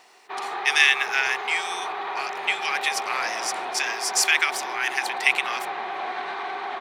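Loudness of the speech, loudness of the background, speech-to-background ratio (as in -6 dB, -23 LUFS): -23.0 LUFS, -31.0 LUFS, 8.0 dB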